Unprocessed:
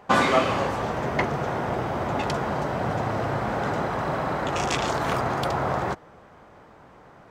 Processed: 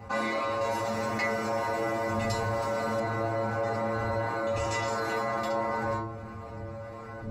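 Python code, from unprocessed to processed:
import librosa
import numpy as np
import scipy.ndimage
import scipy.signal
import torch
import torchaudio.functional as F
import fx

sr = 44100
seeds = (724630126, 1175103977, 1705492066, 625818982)

y = fx.dmg_wind(x, sr, seeds[0], corner_hz=85.0, level_db=-27.0)
y = scipy.signal.sosfilt(scipy.signal.butter(2, 60.0, 'highpass', fs=sr, output='sos'), y)
y = fx.low_shelf(y, sr, hz=95.0, db=-10.5)
y = fx.notch(y, sr, hz=3200.0, q=5.6)
y = fx.stiff_resonator(y, sr, f0_hz=110.0, decay_s=0.47, stiffness=0.002)
y = fx.room_shoebox(y, sr, seeds[1], volume_m3=120.0, walls='furnished', distance_m=1.9)
y = fx.rider(y, sr, range_db=10, speed_s=0.5)
y = fx.high_shelf(y, sr, hz=3500.0, db=10.0, at=(0.61, 3.0))
y = fx.env_flatten(y, sr, amount_pct=50)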